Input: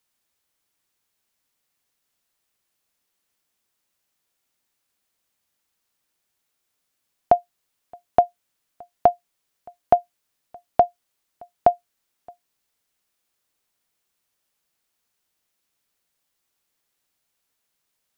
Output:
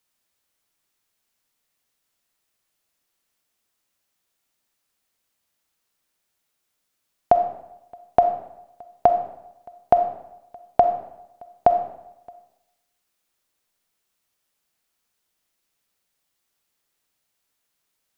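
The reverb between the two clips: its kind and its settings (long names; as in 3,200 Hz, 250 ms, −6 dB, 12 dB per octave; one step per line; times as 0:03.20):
comb and all-pass reverb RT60 0.87 s, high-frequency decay 0.8×, pre-delay 5 ms, DRR 7 dB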